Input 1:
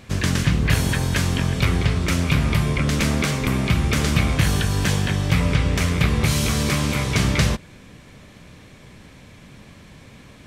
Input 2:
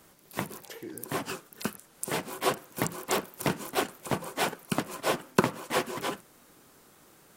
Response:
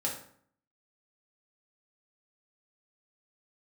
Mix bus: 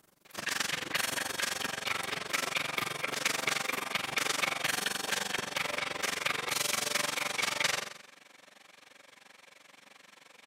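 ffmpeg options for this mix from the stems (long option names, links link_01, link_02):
-filter_complex "[0:a]highpass=700,adelay=250,volume=-6dB,asplit=3[link_01][link_02][link_03];[link_02]volume=-5.5dB[link_04];[link_03]volume=-4.5dB[link_05];[1:a]acompressor=threshold=-35dB:ratio=6,volume=-3.5dB[link_06];[2:a]atrim=start_sample=2205[link_07];[link_04][link_07]afir=irnorm=-1:irlink=0[link_08];[link_05]aecho=0:1:90|180|270|360|450|540:1|0.43|0.185|0.0795|0.0342|0.0147[link_09];[link_01][link_06][link_08][link_09]amix=inputs=4:normalize=0,tremolo=f=23:d=0.919"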